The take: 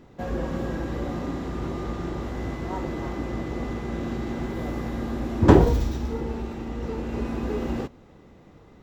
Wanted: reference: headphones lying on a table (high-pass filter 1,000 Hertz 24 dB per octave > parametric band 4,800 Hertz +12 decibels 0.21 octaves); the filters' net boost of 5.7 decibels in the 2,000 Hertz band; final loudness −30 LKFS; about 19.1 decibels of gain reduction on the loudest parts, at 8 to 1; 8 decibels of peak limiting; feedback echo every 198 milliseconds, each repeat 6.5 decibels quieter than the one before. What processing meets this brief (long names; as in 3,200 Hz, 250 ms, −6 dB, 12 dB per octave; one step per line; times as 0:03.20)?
parametric band 2,000 Hz +7 dB
downward compressor 8 to 1, threshold −28 dBFS
brickwall limiter −26 dBFS
high-pass filter 1,000 Hz 24 dB per octave
parametric band 4,800 Hz +12 dB 0.21 octaves
repeating echo 198 ms, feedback 47%, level −6.5 dB
level +13 dB